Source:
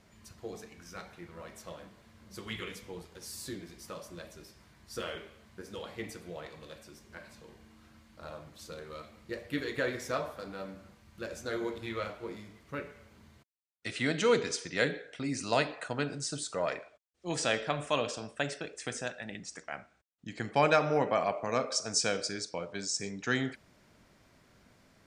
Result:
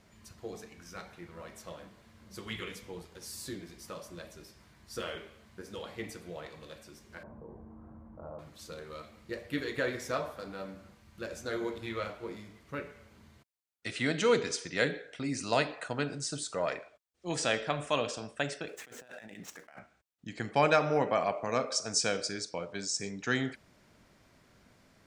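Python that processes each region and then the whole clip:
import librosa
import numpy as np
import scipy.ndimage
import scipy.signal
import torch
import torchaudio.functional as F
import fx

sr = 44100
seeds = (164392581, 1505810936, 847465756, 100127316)

y = fx.chain(x, sr, fx.lowpass(hz=1000.0, slope=24),
    fx.env_flatten(amount_pct=50), at=(7.23, 8.39))
y = fx.chain(y, sr, fx.median_filter(points=9),
    fx.highpass(hz=240.0, slope=6),
    fx.over_compress(threshold_db=-50.0, ratio=-1.0), at=(18.68, 19.79))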